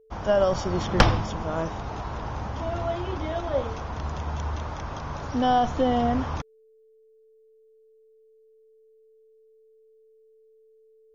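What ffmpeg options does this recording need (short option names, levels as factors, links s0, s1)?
-af "bandreject=f=440:w=30"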